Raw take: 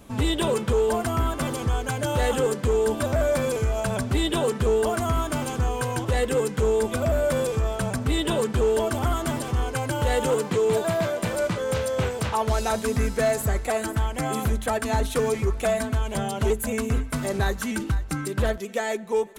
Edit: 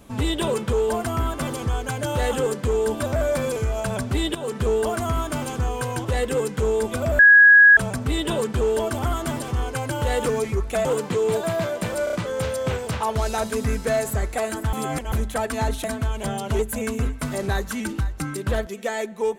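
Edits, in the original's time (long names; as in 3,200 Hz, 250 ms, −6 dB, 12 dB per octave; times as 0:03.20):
0:04.35–0:04.60: fade in, from −13.5 dB
0:07.19–0:07.77: beep over 1,660 Hz −7.5 dBFS
0:11.45: stutter 0.03 s, 4 plays
0:14.05–0:14.44: reverse
0:15.16–0:15.75: move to 0:10.26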